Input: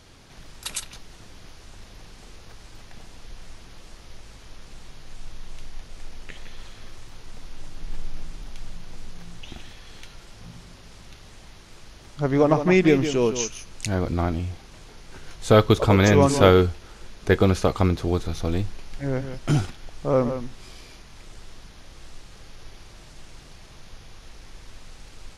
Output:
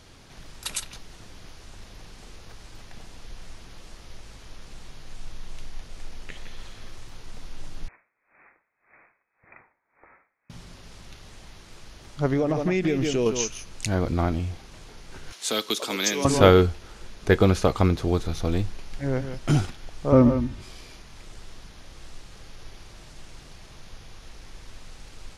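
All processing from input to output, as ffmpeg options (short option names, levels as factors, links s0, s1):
-filter_complex "[0:a]asettb=1/sr,asplit=3[s0][s1][s2];[s0]atrim=end=7.884[s3];[s1]atrim=start=7.88:end=10.5,asetpts=PTS-STARTPTS,afade=t=in:d=0.004:c=qsin,afade=t=out:st=2.616:d=0.004:c=qsin,highpass=540,lowpass=f=2300:t=q:w=0.5098,lowpass=f=2300:t=q:w=0.6013,lowpass=f=2300:t=q:w=0.9,lowpass=f=2300:t=q:w=2.563,afreqshift=-2700,aeval=exprs='val(0)*pow(10,-25*(0.5-0.5*cos(2*PI*1.8*n/s))/20)':c=same[s4];[s2]atrim=start=10.496[s5];[s3][s4]acrossfade=d=0.004:c1=hsin:c2=qsin[s6];[s6][s5]acrossfade=d=0.004:c1=qsin:c2=hsin,asettb=1/sr,asplit=3[s7][s8][s9];[s7]atrim=end=12.334[s10];[s8]atrim=start=12.33:end=13.26,asetpts=PTS-STARTPTS,afade=t=in:d=0.004:c=qsin,afade=t=out:st=0.926:d=0.004:c=qsin,equalizer=f=1000:w=2.9:g=-7,acompressor=threshold=0.112:ratio=6:attack=3.2:release=140:knee=1:detection=peak[s11];[s9]atrim=start=13.256[s12];[s10][s11]acrossfade=d=0.004:c1=hsin:c2=qsin[s13];[s13][s12]acrossfade=d=0.004:c1=qsin:c2=hsin,asettb=1/sr,asplit=3[s14][s15][s16];[s14]atrim=end=15.324[s17];[s15]atrim=start=15.32:end=16.25,asetpts=PTS-STARTPTS,afade=t=in:d=0.004:c=qsin,afade=t=out:st=0.926:d=0.004:c=qsin,tiltshelf=f=1300:g=-7,acrossover=split=310|3000[s18][s19][s20];[s19]acompressor=threshold=0.0141:ratio=2:attack=3.2:release=140:knee=2.83:detection=peak[s21];[s18][s21][s20]amix=inputs=3:normalize=0,highpass=f=240:w=0.5412,highpass=f=240:w=1.3066[s22];[s16]atrim=start=16.246[s23];[s17][s22]acrossfade=d=0.004:c1=hsin:c2=qsin[s24];[s24][s23]acrossfade=d=0.004:c1=qsin:c2=hsin,asettb=1/sr,asplit=3[s25][s26][s27];[s25]atrim=end=20.124[s28];[s26]atrim=start=20.12:end=20.62,asetpts=PTS-STARTPTS,afade=t=in:d=0.004:c=qsin,afade=t=out:st=0.496:d=0.004:c=qsin,highpass=57,bass=f=250:g=14,treble=f=4000:g=-5,aecho=1:1:3.3:0.58,atrim=end_sample=22050[s29];[s27]atrim=start=20.616[s30];[s28][s29]acrossfade=d=0.004:c1=hsin:c2=qsin[s31];[s31][s30]acrossfade=d=0.004:c1=qsin:c2=hsin"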